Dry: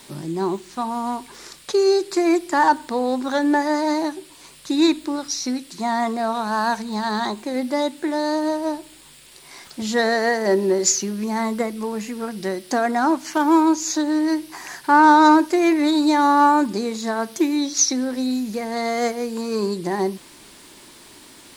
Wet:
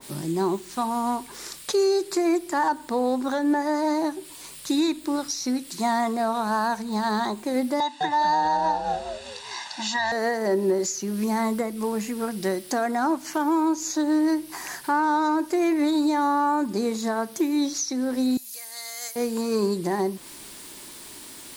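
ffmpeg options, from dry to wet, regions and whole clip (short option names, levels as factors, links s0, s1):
-filter_complex "[0:a]asettb=1/sr,asplit=3[s0][s1][s2];[s0]atrim=end=7.804[s3];[s1]atrim=start=7.8:end=10.12,asetpts=PTS-STARTPTS,afade=t=in:d=0.004:c=qsin,afade=t=out:st=2.316:d=0.004:c=qsin,highpass=430,equalizer=f=570:t=q:w=4:g=-6,equalizer=f=920:t=q:w=4:g=9,equalizer=f=1600:t=q:w=4:g=6,equalizer=f=2700:t=q:w=4:g=4,equalizer=f=4000:t=q:w=4:g=6,equalizer=f=6000:t=q:w=4:g=3,lowpass=f=6900:w=0.5412,lowpass=f=6900:w=1.3066,aecho=1:1:1.1:0.99,atrim=end_sample=102312,asplit=5[s4][s5][s6][s7][s8];[s5]adelay=204,afreqshift=-130,volume=0.447[s9];[s6]adelay=408,afreqshift=-260,volume=0.16[s10];[s7]adelay=612,afreqshift=-390,volume=0.0582[s11];[s8]adelay=816,afreqshift=-520,volume=0.0209[s12];[s4][s9][s10][s11][s12]amix=inputs=5:normalize=0,atrim=end_sample=102312[s13];[s2]atrim=start=10.116[s14];[s3][s13]acrossfade=d=0.004:c1=hsin:c2=qsin[s15];[s15][s14]acrossfade=d=0.004:c1=qsin:c2=hsin,asettb=1/sr,asplit=3[s16][s17][s18];[s16]atrim=end=18.374[s19];[s17]atrim=start=18.37:end=19.16,asetpts=PTS-STARTPTS,afade=t=in:d=0.004:c=qsin,afade=t=out:st=0.786:d=0.004:c=qsin,highpass=f=620:p=1,aderivative[s20];[s18]atrim=start=19.156[s21];[s19][s20]acrossfade=d=0.004:c1=hsin:c2=qsin[s22];[s22][s21]acrossfade=d=0.004:c1=qsin:c2=hsin,highshelf=f=8800:g=11.5,alimiter=limit=0.2:level=0:latency=1:release=260,adynamicequalizer=threshold=0.01:dfrequency=1800:dqfactor=0.7:tfrequency=1800:tqfactor=0.7:attack=5:release=100:ratio=0.375:range=3:mode=cutabove:tftype=highshelf"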